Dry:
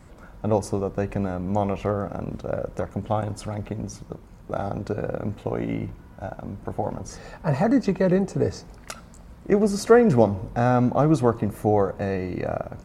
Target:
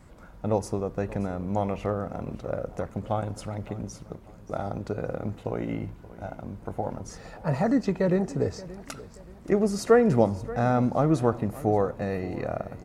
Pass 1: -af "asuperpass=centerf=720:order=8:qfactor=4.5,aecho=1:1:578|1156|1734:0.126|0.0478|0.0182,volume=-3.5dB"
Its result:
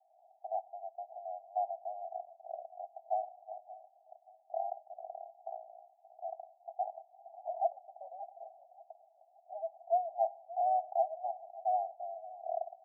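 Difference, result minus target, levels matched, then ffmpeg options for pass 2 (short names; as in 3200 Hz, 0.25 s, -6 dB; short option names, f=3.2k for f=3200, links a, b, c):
1000 Hz band +9.0 dB
-af "aecho=1:1:578|1156|1734:0.126|0.0478|0.0182,volume=-3.5dB"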